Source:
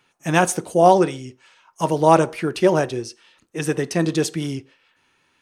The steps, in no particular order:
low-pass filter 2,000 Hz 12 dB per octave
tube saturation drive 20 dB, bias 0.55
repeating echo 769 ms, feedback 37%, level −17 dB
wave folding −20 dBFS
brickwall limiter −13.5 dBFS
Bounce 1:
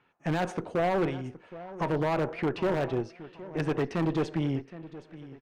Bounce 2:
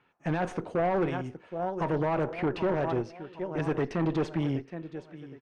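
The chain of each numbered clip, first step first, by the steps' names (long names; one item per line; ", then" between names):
low-pass filter, then brickwall limiter, then tube saturation, then repeating echo, then wave folding
repeating echo, then brickwall limiter, then tube saturation, then wave folding, then low-pass filter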